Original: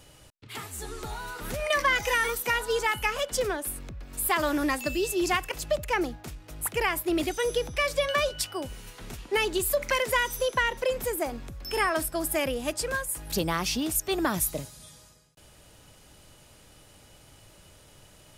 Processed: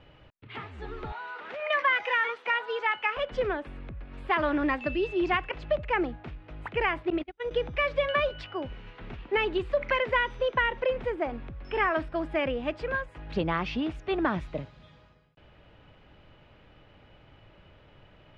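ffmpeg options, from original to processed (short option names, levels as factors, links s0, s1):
-filter_complex "[0:a]asettb=1/sr,asplit=3[s0][s1][s2];[s0]atrim=end=1.124[s3];[s1]atrim=start=1.12:end=3.17,asetpts=PTS-STARTPTS,afade=t=in:d=0.004:c=qsin,afade=t=out:st=2.046:d=0.004:c=qsin,highpass=560[s4];[s2]atrim=start=3.166[s5];[s3][s4]acrossfade=d=0.004:c1=hsin:c2=qsin[s6];[s6][s5]acrossfade=d=0.004:c1=qsin:c2=hsin,asettb=1/sr,asplit=3[s7][s8][s9];[s7]atrim=end=7.104[s10];[s8]atrim=start=7.1:end=7.51,asetpts=PTS-STARTPTS,afade=t=in:d=0.004:c=qsin,afade=t=out:st=0.406:d=0.004:c=qsin,agate=range=0.0141:threshold=0.0501:ratio=16:release=100:detection=peak[s11];[s9]atrim=start=7.506[s12];[s10][s11]acrossfade=d=0.004:c1=hsin:c2=qsin[s13];[s13][s12]acrossfade=d=0.004:c1=qsin:c2=hsin,lowpass=f=2900:w=0.5412,lowpass=f=2900:w=1.3066"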